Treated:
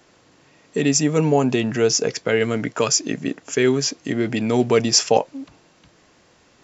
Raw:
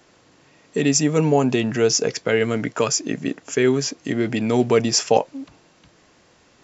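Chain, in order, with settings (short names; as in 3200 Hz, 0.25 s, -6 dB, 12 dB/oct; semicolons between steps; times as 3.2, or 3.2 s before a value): 2.38–5.09 dynamic EQ 4600 Hz, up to +4 dB, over -32 dBFS, Q 0.79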